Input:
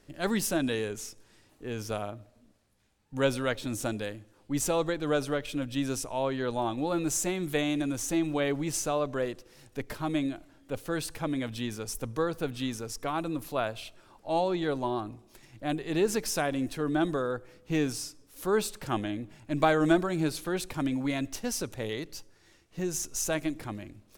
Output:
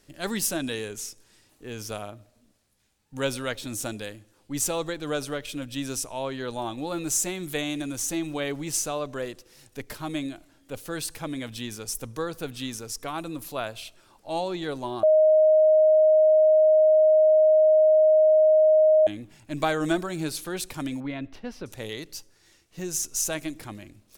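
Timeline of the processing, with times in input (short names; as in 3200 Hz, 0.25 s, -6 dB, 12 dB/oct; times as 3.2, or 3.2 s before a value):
15.03–19.07 bleep 623 Hz -12.5 dBFS
21–21.66 air absorption 370 m
whole clip: high shelf 3000 Hz +8.5 dB; gain -2 dB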